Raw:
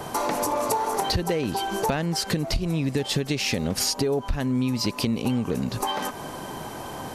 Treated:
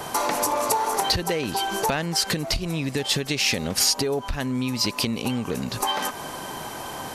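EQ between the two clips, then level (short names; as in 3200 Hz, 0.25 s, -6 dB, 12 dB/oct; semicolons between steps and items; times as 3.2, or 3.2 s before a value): tilt shelf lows -4 dB, about 720 Hz; +1.0 dB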